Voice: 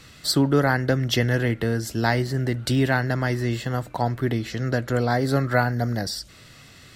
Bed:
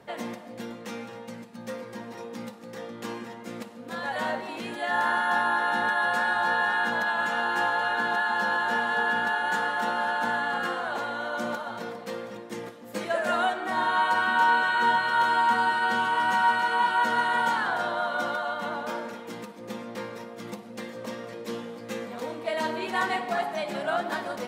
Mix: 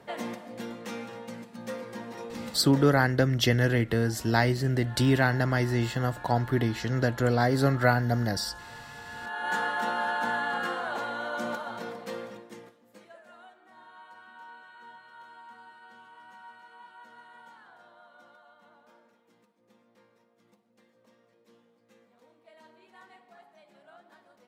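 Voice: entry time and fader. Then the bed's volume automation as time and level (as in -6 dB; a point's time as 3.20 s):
2.30 s, -2.0 dB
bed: 2.85 s -0.5 dB
3.09 s -20 dB
9.04 s -20 dB
9.52 s -2 dB
12.24 s -2 dB
13.25 s -27 dB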